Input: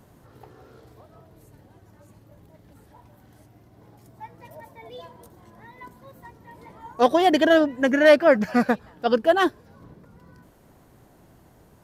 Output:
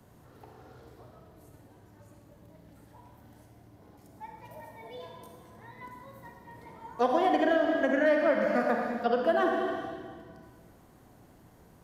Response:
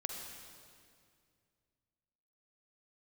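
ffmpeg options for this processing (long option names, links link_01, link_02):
-filter_complex "[1:a]atrim=start_sample=2205,asetrate=61740,aresample=44100[link_01];[0:a][link_01]afir=irnorm=-1:irlink=0,acrossover=split=100|330|1000|2200[link_02][link_03][link_04][link_05][link_06];[link_02]acompressor=threshold=-60dB:ratio=4[link_07];[link_03]acompressor=threshold=-36dB:ratio=4[link_08];[link_04]acompressor=threshold=-25dB:ratio=4[link_09];[link_05]acompressor=threshold=-33dB:ratio=4[link_10];[link_06]acompressor=threshold=-51dB:ratio=4[link_11];[link_07][link_08][link_09][link_10][link_11]amix=inputs=5:normalize=0"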